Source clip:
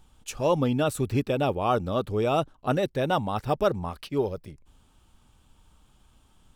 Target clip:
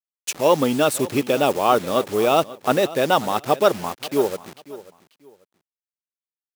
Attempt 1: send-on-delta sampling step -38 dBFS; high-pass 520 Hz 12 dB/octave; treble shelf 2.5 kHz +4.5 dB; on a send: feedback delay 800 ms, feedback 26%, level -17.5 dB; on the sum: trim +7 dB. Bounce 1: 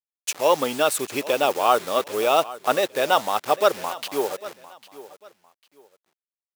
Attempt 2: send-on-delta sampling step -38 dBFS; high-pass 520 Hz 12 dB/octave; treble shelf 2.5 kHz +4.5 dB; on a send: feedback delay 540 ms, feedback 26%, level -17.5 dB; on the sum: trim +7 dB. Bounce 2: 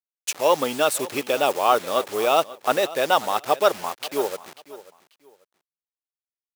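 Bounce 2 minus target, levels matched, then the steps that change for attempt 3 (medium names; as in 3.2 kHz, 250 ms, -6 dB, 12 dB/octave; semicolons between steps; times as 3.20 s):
250 Hz band -7.0 dB
change: high-pass 240 Hz 12 dB/octave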